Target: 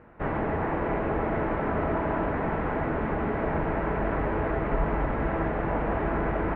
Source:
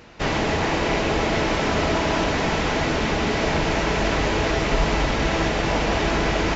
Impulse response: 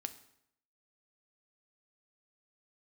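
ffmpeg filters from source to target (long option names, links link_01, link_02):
-af "lowpass=frequency=1700:width=0.5412,lowpass=frequency=1700:width=1.3066,volume=-5dB"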